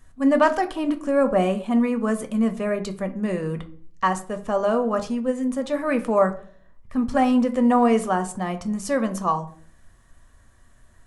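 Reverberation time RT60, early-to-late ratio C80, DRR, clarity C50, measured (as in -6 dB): 0.50 s, 19.0 dB, 7.0 dB, 14.5 dB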